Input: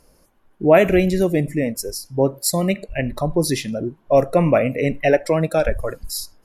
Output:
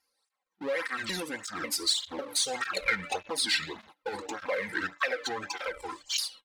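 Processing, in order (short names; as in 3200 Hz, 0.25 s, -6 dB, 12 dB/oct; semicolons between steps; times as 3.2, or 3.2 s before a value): repeated pitch sweeps -9.5 st, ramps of 0.561 s; Doppler pass-by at 2.8, 9 m/s, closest 1.7 m; tilt +2 dB/oct; comb 3.8 ms, depth 78%; de-hum 291.2 Hz, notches 14; power-law curve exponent 0.7; compressor 10:1, threshold -30 dBFS, peak gain reduction 16 dB; ten-band EQ 250 Hz -8 dB, 1000 Hz +7 dB, 2000 Hz +8 dB, 4000 Hz +10 dB; gate -45 dBFS, range -24 dB; tape flanging out of phase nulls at 1.7 Hz, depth 1.9 ms; gain +2 dB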